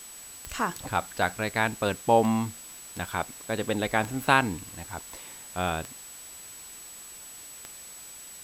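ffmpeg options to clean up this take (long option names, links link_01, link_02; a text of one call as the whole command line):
ffmpeg -i in.wav -af "adeclick=threshold=4,bandreject=frequency=7900:width=30,afwtdn=0.0045" out.wav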